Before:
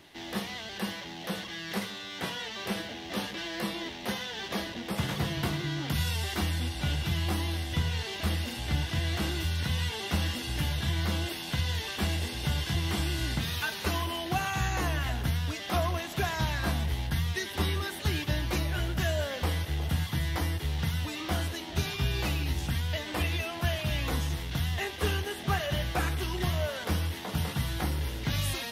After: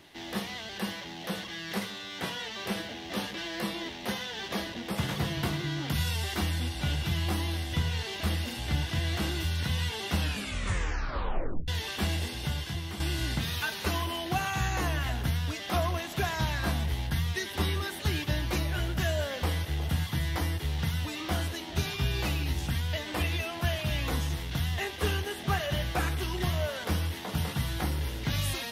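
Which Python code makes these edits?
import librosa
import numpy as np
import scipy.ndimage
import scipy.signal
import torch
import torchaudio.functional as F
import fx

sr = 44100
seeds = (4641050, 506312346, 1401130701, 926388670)

y = fx.edit(x, sr, fx.tape_stop(start_s=10.16, length_s=1.52),
    fx.fade_out_to(start_s=12.19, length_s=0.81, floor_db=-9.0), tone=tone)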